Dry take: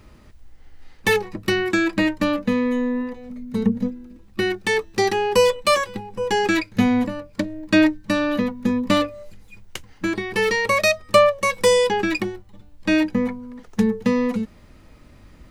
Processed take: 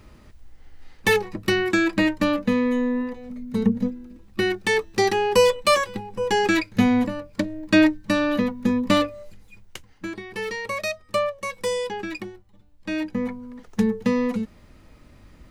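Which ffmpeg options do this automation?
-af "volume=2.24,afade=t=out:st=8.99:d=1.14:silence=0.354813,afade=t=in:st=12.94:d=0.49:silence=0.421697"

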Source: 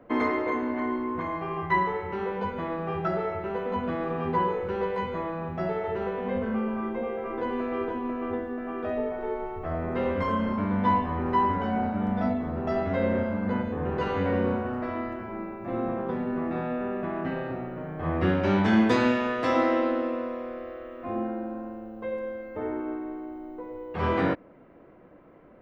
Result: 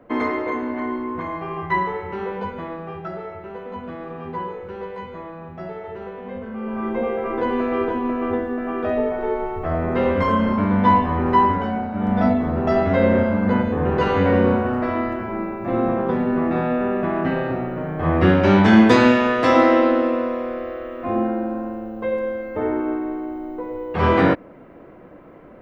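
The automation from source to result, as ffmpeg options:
-af "volume=15,afade=t=out:st=2.34:d=0.67:silence=0.473151,afade=t=in:st=6.56:d=0.43:silence=0.266073,afade=t=out:st=11.39:d=0.49:silence=0.398107,afade=t=in:st=11.88:d=0.32:silence=0.354813"

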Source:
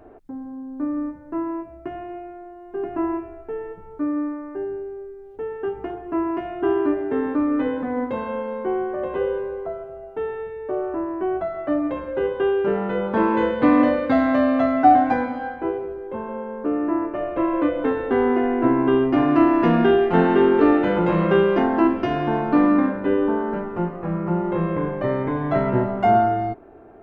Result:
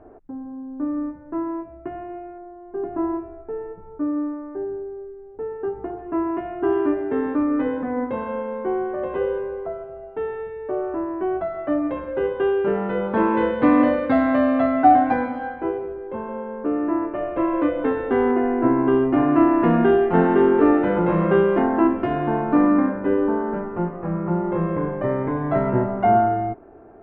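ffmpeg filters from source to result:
-af "asetnsamples=n=441:p=0,asendcmd='0.87 lowpass f 2000;2.38 lowpass f 1300;5.99 lowpass f 2100;6.73 lowpass f 3300;7.43 lowpass f 2500;8.85 lowpass f 3200;18.31 lowpass f 2000',lowpass=1600"

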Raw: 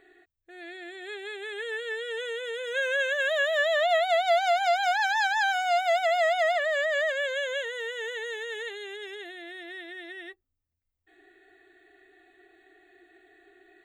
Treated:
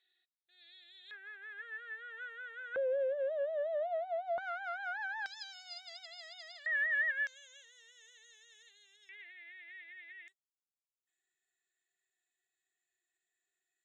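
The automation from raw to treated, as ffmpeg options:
-af "asetnsamples=n=441:p=0,asendcmd='1.11 bandpass f 1500;2.76 bandpass f 530;4.38 bandpass f 1300;5.26 bandpass f 4800;6.66 bandpass f 1800;7.27 bandpass f 5700;9.09 bandpass f 2200;10.28 bandpass f 7200',bandpass=f=3800:t=q:w=8.4:csg=0"

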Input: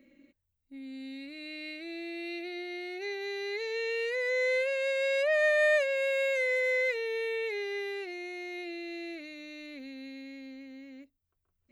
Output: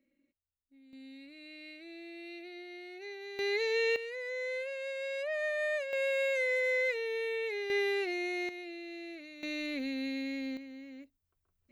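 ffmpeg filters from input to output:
-af "asetnsamples=n=441:p=0,asendcmd='0.93 volume volume -8dB;3.39 volume volume 3.5dB;3.96 volume volume -8.5dB;5.93 volume volume -2dB;7.7 volume volume 5dB;8.49 volume volume -4.5dB;9.43 volume volume 8dB;10.57 volume volume 0dB',volume=0.158"

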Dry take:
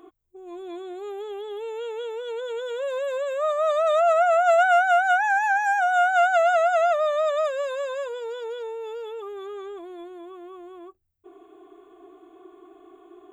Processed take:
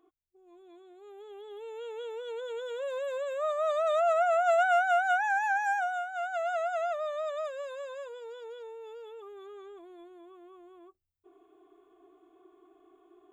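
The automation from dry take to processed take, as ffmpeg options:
-af "volume=1.06,afade=t=in:st=0.95:d=1.19:silence=0.266073,afade=t=out:st=5.73:d=0.33:silence=0.266073,afade=t=in:st=6.06:d=0.51:silence=0.446684"

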